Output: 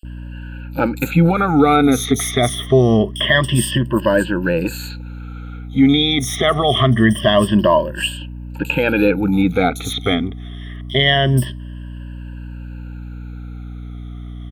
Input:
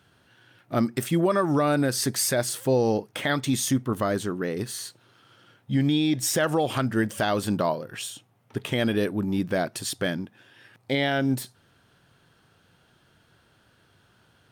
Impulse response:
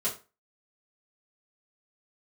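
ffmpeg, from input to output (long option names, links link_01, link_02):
-filter_complex "[0:a]afftfilt=real='re*pow(10,23/40*sin(2*PI*(1.3*log(max(b,1)*sr/1024/100)/log(2)-(-0.25)*(pts-256)/sr)))':imag='im*pow(10,23/40*sin(2*PI*(1.3*log(max(b,1)*sr/1024/100)/log(2)-(-0.25)*(pts-256)/sr)))':win_size=1024:overlap=0.75,highshelf=frequency=4000:width_type=q:width=3:gain=-6.5,asplit=2[link_01][link_02];[link_02]alimiter=limit=-12dB:level=0:latency=1:release=22,volume=0dB[link_03];[link_01][link_03]amix=inputs=2:normalize=0,aeval=exprs='val(0)+0.0355*(sin(2*PI*60*n/s)+sin(2*PI*2*60*n/s)/2+sin(2*PI*3*60*n/s)/3+sin(2*PI*4*60*n/s)/4+sin(2*PI*5*60*n/s)/5)':channel_layout=same,acrossover=split=4400[link_04][link_05];[link_04]adelay=50[link_06];[link_06][link_05]amix=inputs=2:normalize=0"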